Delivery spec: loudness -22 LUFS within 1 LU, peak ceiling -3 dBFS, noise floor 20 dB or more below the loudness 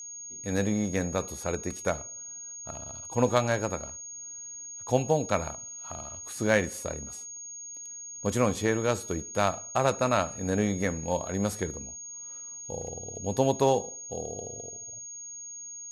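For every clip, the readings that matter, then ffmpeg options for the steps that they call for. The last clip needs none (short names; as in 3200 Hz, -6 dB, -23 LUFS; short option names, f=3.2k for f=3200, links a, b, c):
steady tone 6600 Hz; tone level -39 dBFS; loudness -30.5 LUFS; peak -8.0 dBFS; loudness target -22.0 LUFS
-> -af "bandreject=f=6.6k:w=30"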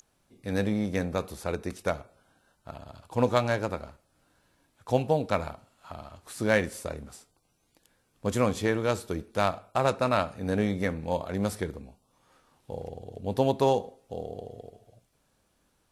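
steady tone none; loudness -29.5 LUFS; peak -8.0 dBFS; loudness target -22.0 LUFS
-> -af "volume=7.5dB,alimiter=limit=-3dB:level=0:latency=1"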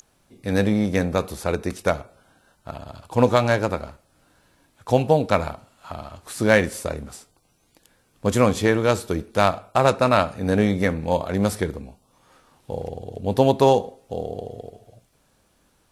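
loudness -22.0 LUFS; peak -3.0 dBFS; noise floor -64 dBFS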